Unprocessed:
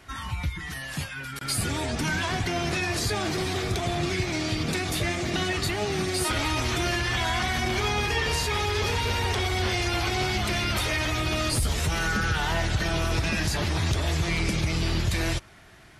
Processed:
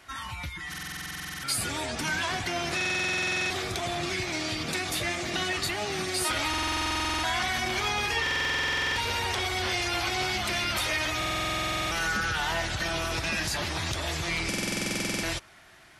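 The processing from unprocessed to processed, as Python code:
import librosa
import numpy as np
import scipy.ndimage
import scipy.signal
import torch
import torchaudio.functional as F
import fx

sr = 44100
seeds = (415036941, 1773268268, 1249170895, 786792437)

y = fx.low_shelf(x, sr, hz=310.0, db=-10.5)
y = fx.notch(y, sr, hz=430.0, q=12.0)
y = fx.buffer_glitch(y, sr, at_s=(0.69, 2.76, 6.49, 8.22, 11.17, 14.49), block=2048, repeats=15)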